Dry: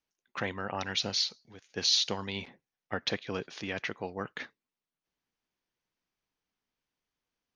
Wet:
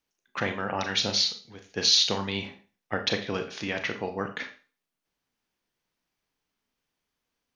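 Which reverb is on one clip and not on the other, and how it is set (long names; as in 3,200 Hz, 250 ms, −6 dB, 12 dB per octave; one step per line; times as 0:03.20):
four-comb reverb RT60 0.36 s, combs from 27 ms, DRR 6 dB
level +4.5 dB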